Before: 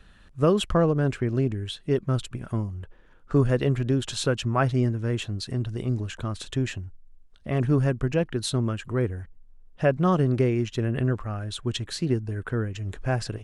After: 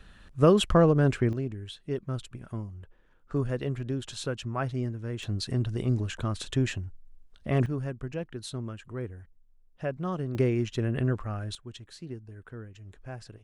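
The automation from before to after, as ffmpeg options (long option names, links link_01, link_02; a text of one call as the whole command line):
ffmpeg -i in.wav -af "asetnsamples=nb_out_samples=441:pad=0,asendcmd='1.33 volume volume -8dB;5.23 volume volume 0dB;7.66 volume volume -10.5dB;10.35 volume volume -2.5dB;11.55 volume volume -15dB',volume=1dB" out.wav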